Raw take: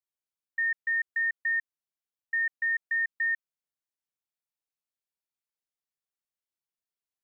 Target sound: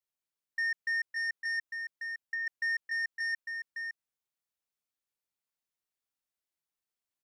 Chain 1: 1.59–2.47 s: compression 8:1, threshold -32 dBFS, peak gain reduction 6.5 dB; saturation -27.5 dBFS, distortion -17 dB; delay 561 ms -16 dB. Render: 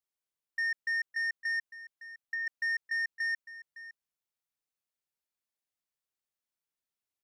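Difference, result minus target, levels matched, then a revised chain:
echo-to-direct -9 dB
1.59–2.47 s: compression 8:1, threshold -32 dBFS, peak gain reduction 6.5 dB; saturation -27.5 dBFS, distortion -17 dB; delay 561 ms -7 dB

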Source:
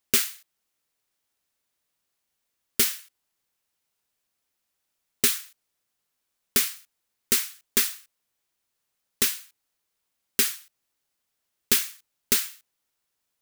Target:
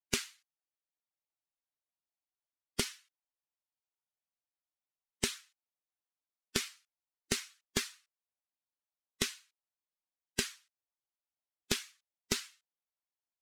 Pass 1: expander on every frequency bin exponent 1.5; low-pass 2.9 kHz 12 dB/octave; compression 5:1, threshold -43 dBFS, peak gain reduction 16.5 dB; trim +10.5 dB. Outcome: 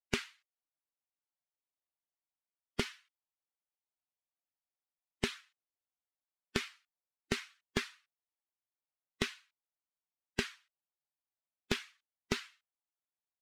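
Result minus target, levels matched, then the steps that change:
8 kHz band -8.0 dB
change: low-pass 6.7 kHz 12 dB/octave

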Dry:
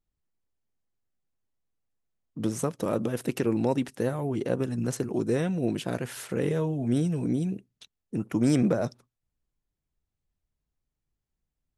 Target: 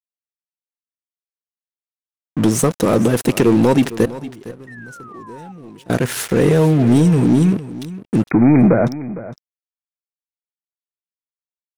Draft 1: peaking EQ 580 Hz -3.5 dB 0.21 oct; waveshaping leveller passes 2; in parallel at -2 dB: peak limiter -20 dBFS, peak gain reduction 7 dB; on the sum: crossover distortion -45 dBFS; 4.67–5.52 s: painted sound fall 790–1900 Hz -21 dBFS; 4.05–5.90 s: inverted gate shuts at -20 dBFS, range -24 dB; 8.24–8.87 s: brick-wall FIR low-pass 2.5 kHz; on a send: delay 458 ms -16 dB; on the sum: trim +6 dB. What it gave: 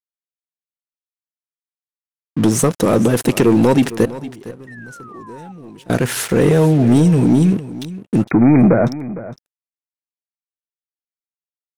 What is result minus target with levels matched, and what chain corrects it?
crossover distortion: distortion -10 dB
peaking EQ 580 Hz -3.5 dB 0.21 oct; waveshaping leveller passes 2; in parallel at -2 dB: peak limiter -20 dBFS, peak gain reduction 7 dB; on the sum: crossover distortion -35 dBFS; 4.67–5.52 s: painted sound fall 790–1900 Hz -21 dBFS; 4.05–5.90 s: inverted gate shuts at -20 dBFS, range -24 dB; 8.24–8.87 s: brick-wall FIR low-pass 2.5 kHz; on a send: delay 458 ms -16 dB; on the sum: trim +6 dB

